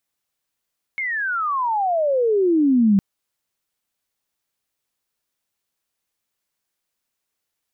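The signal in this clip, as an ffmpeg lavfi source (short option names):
-f lavfi -i "aevalsrc='pow(10,(-22+10.5*t/2.01)/20)*sin(2*PI*2200*2.01/log(190/2200)*(exp(log(190/2200)*t/2.01)-1))':d=2.01:s=44100"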